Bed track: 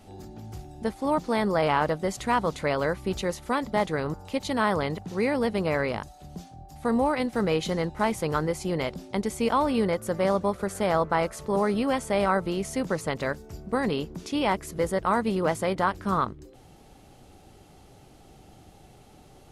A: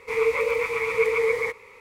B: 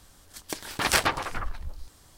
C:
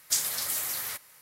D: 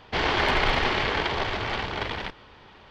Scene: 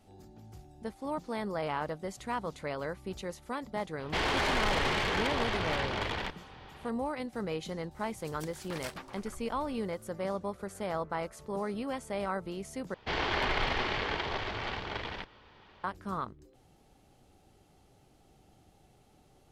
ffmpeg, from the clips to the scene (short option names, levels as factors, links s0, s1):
-filter_complex "[4:a]asplit=2[s0][s1];[0:a]volume=0.299[s2];[s0]asoftclip=type=tanh:threshold=0.0631[s3];[2:a]acompressor=threshold=0.0112:ratio=2:attack=57:release=742:knee=1:detection=peak[s4];[s2]asplit=2[s5][s6];[s5]atrim=end=12.944[s7];[s1]atrim=end=2.9,asetpts=PTS-STARTPTS,volume=0.422[s8];[s6]atrim=start=15.836[s9];[s3]atrim=end=2.9,asetpts=PTS-STARTPTS,volume=0.841,afade=t=in:d=0.004:c=hsin,afade=t=out:st=2.896:d=0.004:c=hsin,adelay=4000[s10];[s4]atrim=end=2.17,asetpts=PTS-STARTPTS,volume=0.282,afade=t=in:d=0.004:c=hsin,afade=t=out:st=2.166:d=0.004:c=hsin,adelay=7910[s11];[s7][s8]acrossfade=d=0.004:c1=hsin:c2=hsin[s12];[s12][s9]acrossfade=d=0.004:c1=hsin:c2=hsin[s13];[s13][s10][s11]amix=inputs=3:normalize=0"